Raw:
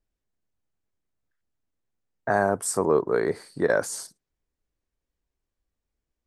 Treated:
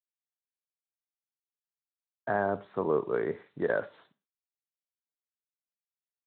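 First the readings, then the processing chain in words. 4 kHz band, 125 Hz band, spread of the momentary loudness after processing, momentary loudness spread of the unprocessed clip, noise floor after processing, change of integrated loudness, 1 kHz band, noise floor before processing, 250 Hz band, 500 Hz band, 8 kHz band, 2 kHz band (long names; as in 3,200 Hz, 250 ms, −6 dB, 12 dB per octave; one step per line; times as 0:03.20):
below −15 dB, −6.5 dB, 8 LU, 13 LU, below −85 dBFS, −6.5 dB, −6.5 dB, −85 dBFS, −6.0 dB, −6.0 dB, below −40 dB, −6.5 dB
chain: bit-depth reduction 10 bits, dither none
four-comb reverb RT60 0.3 s, combs from 27 ms, DRR 15 dB
level −6.5 dB
Speex 24 kbit/s 8,000 Hz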